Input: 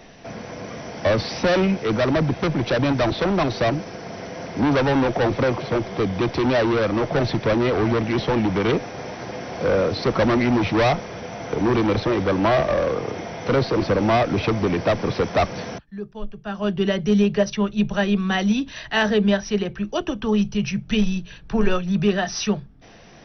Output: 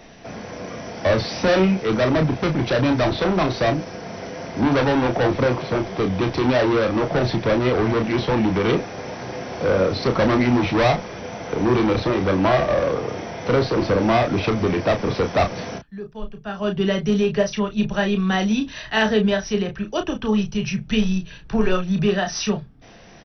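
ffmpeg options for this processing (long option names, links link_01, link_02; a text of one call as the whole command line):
ffmpeg -i in.wav -filter_complex "[0:a]asplit=2[link_01][link_02];[link_02]adelay=32,volume=-6.5dB[link_03];[link_01][link_03]amix=inputs=2:normalize=0" out.wav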